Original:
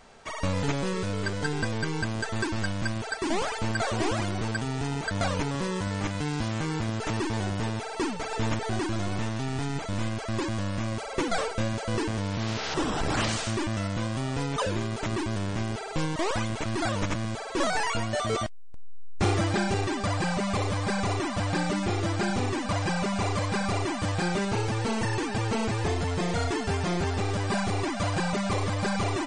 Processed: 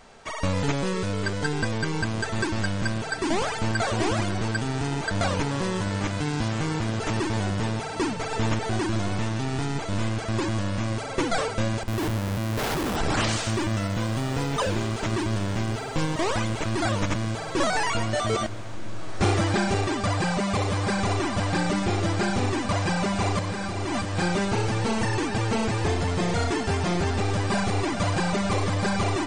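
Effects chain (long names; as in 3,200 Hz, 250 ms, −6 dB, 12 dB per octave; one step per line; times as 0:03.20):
0:11.83–0:12.96: comparator with hysteresis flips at −31.5 dBFS
0:23.39–0:24.17: compressor whose output falls as the input rises −32 dBFS, ratio −1
on a send: feedback delay with all-pass diffusion 1,667 ms, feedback 47%, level −13 dB
on the sum: level +2.5 dB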